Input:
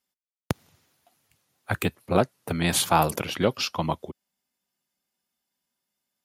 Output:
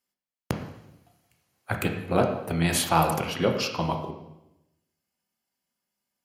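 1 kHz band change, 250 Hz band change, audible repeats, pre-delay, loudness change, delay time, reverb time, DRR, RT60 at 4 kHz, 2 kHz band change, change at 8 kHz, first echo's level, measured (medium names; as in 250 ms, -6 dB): -0.5 dB, +0.5 dB, no echo, 12 ms, -0.5 dB, no echo, 0.90 s, 3.0 dB, 0.85 s, -0.5 dB, -2.0 dB, no echo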